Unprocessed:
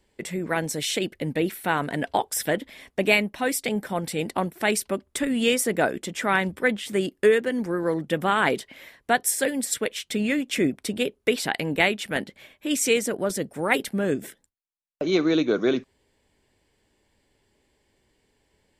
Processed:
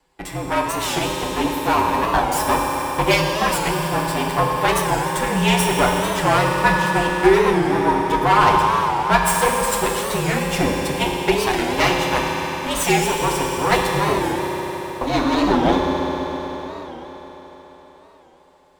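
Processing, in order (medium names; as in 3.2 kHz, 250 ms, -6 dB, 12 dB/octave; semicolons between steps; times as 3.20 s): comb filter that takes the minimum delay 9.1 ms; frequency shift -52 Hz; peaking EQ 940 Hz +9.5 dB 0.75 oct; reverberation RT60 5.0 s, pre-delay 3 ms, DRR -1.5 dB; warped record 45 rpm, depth 160 cents; trim +2 dB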